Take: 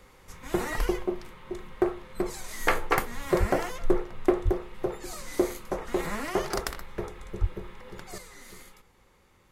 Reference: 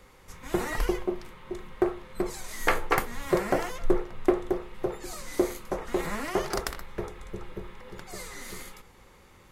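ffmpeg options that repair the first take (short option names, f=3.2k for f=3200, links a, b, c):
-filter_complex "[0:a]asplit=3[a][b][c];[a]afade=t=out:st=3.39:d=0.02[d];[b]highpass=f=140:w=0.5412,highpass=f=140:w=1.3066,afade=t=in:st=3.39:d=0.02,afade=t=out:st=3.51:d=0.02[e];[c]afade=t=in:st=3.51:d=0.02[f];[d][e][f]amix=inputs=3:normalize=0,asplit=3[g][h][i];[g]afade=t=out:st=4.44:d=0.02[j];[h]highpass=f=140:w=0.5412,highpass=f=140:w=1.3066,afade=t=in:st=4.44:d=0.02,afade=t=out:st=4.56:d=0.02[k];[i]afade=t=in:st=4.56:d=0.02[l];[j][k][l]amix=inputs=3:normalize=0,asplit=3[m][n][o];[m]afade=t=out:st=7.4:d=0.02[p];[n]highpass=f=140:w=0.5412,highpass=f=140:w=1.3066,afade=t=in:st=7.4:d=0.02,afade=t=out:st=7.52:d=0.02[q];[o]afade=t=in:st=7.52:d=0.02[r];[p][q][r]amix=inputs=3:normalize=0,asetnsamples=n=441:p=0,asendcmd='8.18 volume volume 7dB',volume=0dB"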